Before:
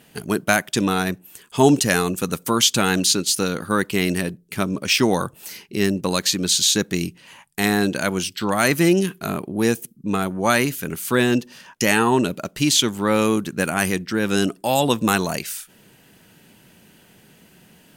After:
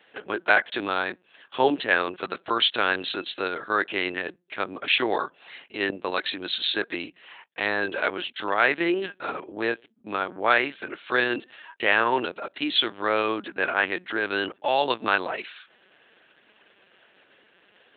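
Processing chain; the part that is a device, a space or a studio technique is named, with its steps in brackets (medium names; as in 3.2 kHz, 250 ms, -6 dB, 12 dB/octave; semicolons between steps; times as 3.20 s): talking toy (LPC vocoder at 8 kHz pitch kept; high-pass 450 Hz 12 dB/octave; peaking EQ 1.6 kHz +4.5 dB 0.4 oct); trim -1.5 dB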